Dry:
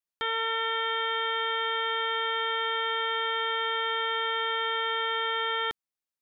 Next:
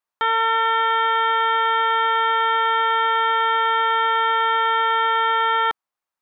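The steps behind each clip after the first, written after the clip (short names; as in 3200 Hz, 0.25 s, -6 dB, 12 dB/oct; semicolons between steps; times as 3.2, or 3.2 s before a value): bell 1000 Hz +14.5 dB 1.9 oct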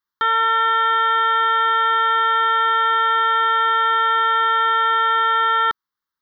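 fixed phaser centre 2500 Hz, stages 6; gain +4 dB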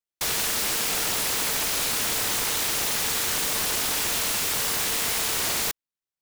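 noise-modulated delay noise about 3200 Hz, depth 0.36 ms; gain -8.5 dB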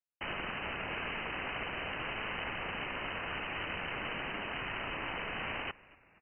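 inverted band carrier 3000 Hz; frequency-shifting echo 0.237 s, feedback 53%, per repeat -100 Hz, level -22 dB; gain -6.5 dB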